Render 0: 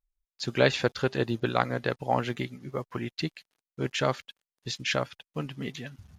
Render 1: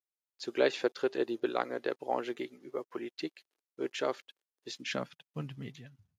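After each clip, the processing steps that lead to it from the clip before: fade out at the end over 0.70 s; high-pass sweep 360 Hz -> 110 Hz, 4.65–5.36 s; trim -8.5 dB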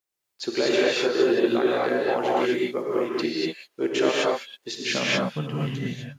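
peak limiter -24 dBFS, peak gain reduction 11 dB; gated-style reverb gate 270 ms rising, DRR -5.5 dB; trim +8.5 dB

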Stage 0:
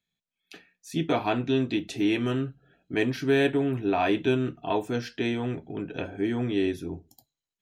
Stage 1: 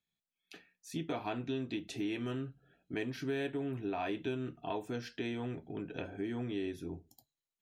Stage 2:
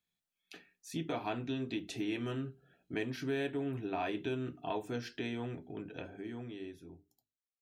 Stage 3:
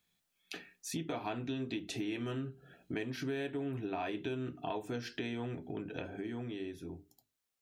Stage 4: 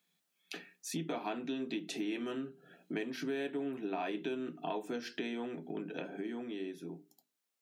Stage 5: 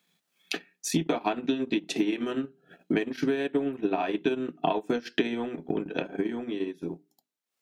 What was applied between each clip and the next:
compression 2.5:1, threshold -30 dBFS, peak gain reduction 8 dB; trim -6 dB
fade out at the end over 2.50 s; hum notches 50/100/150/200/250/300/350/400 Hz; trim +1 dB
compression 2.5:1, threshold -49 dBFS, peak gain reduction 12 dB; trim +9 dB
elliptic high-pass 160 Hz, stop band 40 dB; trim +1 dB
treble shelf 7.2 kHz -5 dB; transient shaper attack +7 dB, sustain -11 dB; trim +8 dB

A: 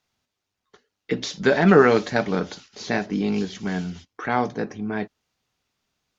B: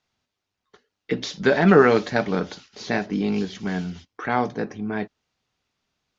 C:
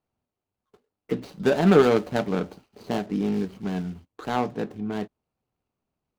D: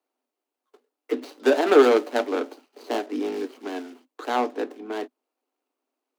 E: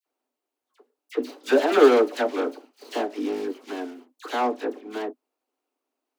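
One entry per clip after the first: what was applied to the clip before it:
low-pass 6.4 kHz 12 dB/octave
median filter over 25 samples; trim -1.5 dB
steep high-pass 250 Hz 96 dB/octave; trim +2.5 dB
phase dispersion lows, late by 61 ms, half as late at 1.8 kHz

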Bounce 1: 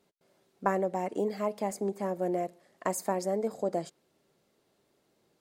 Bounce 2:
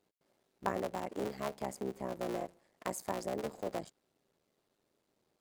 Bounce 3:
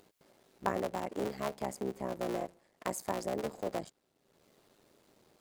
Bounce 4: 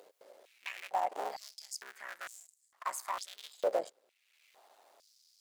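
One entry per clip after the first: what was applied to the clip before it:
cycle switcher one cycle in 3, muted; trim -5.5 dB
upward compressor, threshold -56 dBFS; trim +2 dB
saturation -30.5 dBFS, distortion -11 dB; step-sequenced high-pass 2.2 Hz 520–7400 Hz; trim +1 dB

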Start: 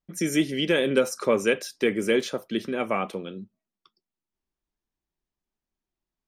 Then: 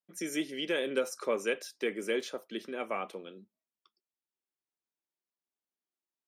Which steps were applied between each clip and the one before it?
high-pass 300 Hz 12 dB/octave; trim -8 dB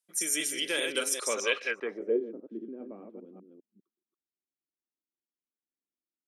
chunks repeated in reverse 200 ms, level -4 dB; tilt EQ +3 dB/octave; low-pass sweep 10 kHz -> 290 Hz, 1.23–2.25 s

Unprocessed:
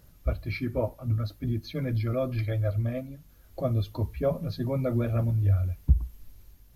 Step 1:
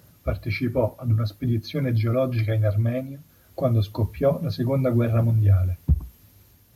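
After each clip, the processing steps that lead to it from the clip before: high-pass 78 Hz 24 dB/octave; trim +6 dB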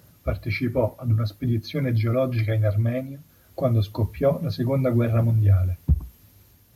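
dynamic bell 2 kHz, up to +5 dB, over -55 dBFS, Q 7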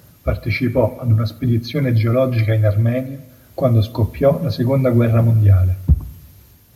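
spring tank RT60 1.2 s, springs 43/47 ms, chirp 45 ms, DRR 17 dB; trim +6.5 dB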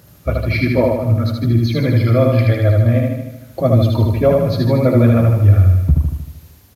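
feedback delay 77 ms, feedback 57%, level -3 dB

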